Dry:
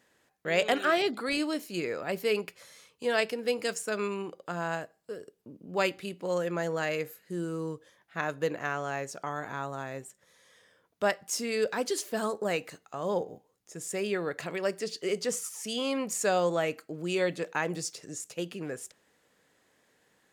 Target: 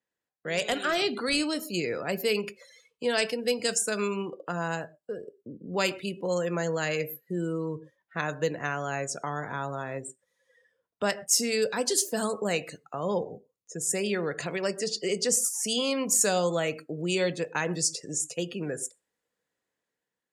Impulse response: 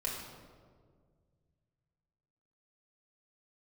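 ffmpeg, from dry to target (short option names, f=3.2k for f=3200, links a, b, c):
-filter_complex "[0:a]asplit=2[a][b];[1:a]atrim=start_sample=2205,atrim=end_sample=6174[c];[b][c]afir=irnorm=-1:irlink=0,volume=-12.5dB[d];[a][d]amix=inputs=2:normalize=0,volume=15.5dB,asoftclip=hard,volume=-15.5dB,acrossover=split=200|3000[e][f][g];[f]acompressor=threshold=-42dB:ratio=1.5[h];[e][h][g]amix=inputs=3:normalize=0,afftdn=nr=23:nf=-49,dynaudnorm=f=310:g=5:m=5dB,adynamicequalizer=threshold=0.00562:dfrequency=5200:dqfactor=0.7:tfrequency=5200:tqfactor=0.7:attack=5:release=100:ratio=0.375:range=2.5:mode=boostabove:tftype=highshelf"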